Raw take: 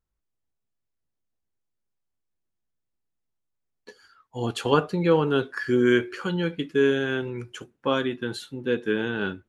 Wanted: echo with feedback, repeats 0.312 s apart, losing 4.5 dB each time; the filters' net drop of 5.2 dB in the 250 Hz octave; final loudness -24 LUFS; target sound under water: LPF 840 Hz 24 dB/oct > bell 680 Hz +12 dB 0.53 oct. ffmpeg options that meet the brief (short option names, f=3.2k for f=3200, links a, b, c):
-af "lowpass=f=840:w=0.5412,lowpass=f=840:w=1.3066,equalizer=f=250:t=o:g=-8.5,equalizer=f=680:t=o:w=0.53:g=12,aecho=1:1:312|624|936|1248|1560|1872|2184|2496|2808:0.596|0.357|0.214|0.129|0.0772|0.0463|0.0278|0.0167|0.01,volume=1.5dB"